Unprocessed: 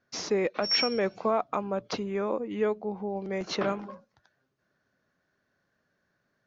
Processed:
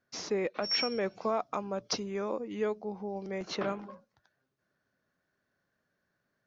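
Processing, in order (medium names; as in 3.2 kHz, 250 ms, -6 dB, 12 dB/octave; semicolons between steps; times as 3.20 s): 1.21–3.31 s: peaking EQ 5.5 kHz +14.5 dB 0.59 oct; trim -4.5 dB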